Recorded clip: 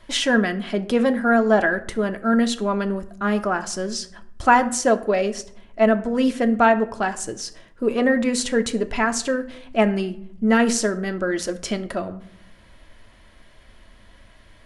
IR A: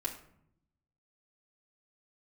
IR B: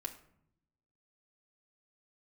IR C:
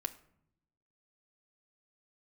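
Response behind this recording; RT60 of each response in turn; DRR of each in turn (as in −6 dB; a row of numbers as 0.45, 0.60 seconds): C; 0.70, 0.70, 0.70 seconds; −2.5, 2.0, 7.0 decibels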